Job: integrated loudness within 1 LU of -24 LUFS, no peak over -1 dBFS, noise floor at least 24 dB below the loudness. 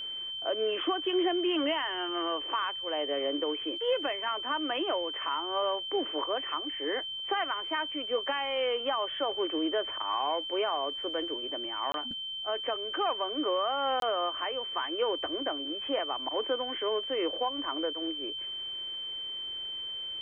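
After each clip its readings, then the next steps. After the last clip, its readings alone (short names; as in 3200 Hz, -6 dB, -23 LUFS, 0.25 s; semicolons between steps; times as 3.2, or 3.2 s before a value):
dropouts 2; longest dropout 22 ms; steady tone 3100 Hz; tone level -35 dBFS; loudness -31.0 LUFS; peak -18.0 dBFS; loudness target -24.0 LUFS
-> interpolate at 11.92/14, 22 ms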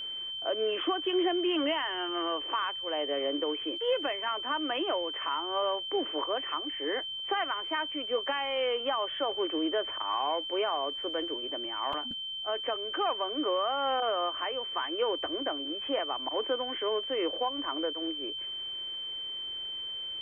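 dropouts 0; steady tone 3100 Hz; tone level -35 dBFS
-> notch 3100 Hz, Q 30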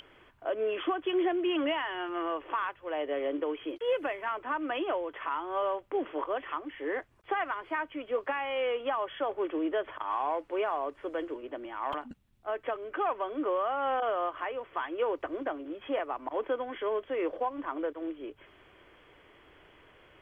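steady tone none; loudness -33.0 LUFS; peak -19.5 dBFS; loudness target -24.0 LUFS
-> gain +9 dB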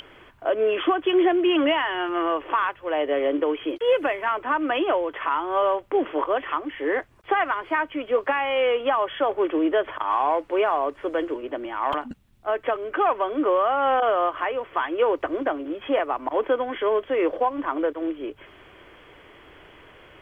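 loudness -24.0 LUFS; peak -10.5 dBFS; noise floor -51 dBFS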